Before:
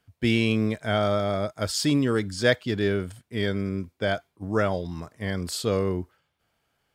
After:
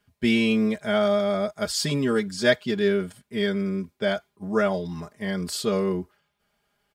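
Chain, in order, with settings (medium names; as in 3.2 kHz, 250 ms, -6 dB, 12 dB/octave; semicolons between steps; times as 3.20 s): comb 4.9 ms, depth 89%; trim -1.5 dB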